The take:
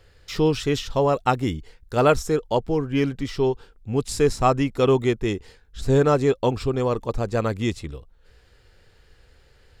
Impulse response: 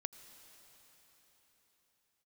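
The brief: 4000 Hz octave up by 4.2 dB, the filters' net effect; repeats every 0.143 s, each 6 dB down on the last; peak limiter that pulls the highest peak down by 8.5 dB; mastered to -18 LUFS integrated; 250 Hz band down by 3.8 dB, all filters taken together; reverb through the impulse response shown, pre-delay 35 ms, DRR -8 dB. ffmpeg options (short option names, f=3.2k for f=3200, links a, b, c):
-filter_complex "[0:a]equalizer=f=250:t=o:g=-5,equalizer=f=4k:t=o:g=5.5,alimiter=limit=-13.5dB:level=0:latency=1,aecho=1:1:143|286|429|572|715|858:0.501|0.251|0.125|0.0626|0.0313|0.0157,asplit=2[a][b];[1:a]atrim=start_sample=2205,adelay=35[c];[b][c]afir=irnorm=-1:irlink=0,volume=10.5dB[d];[a][d]amix=inputs=2:normalize=0,volume=-1.5dB"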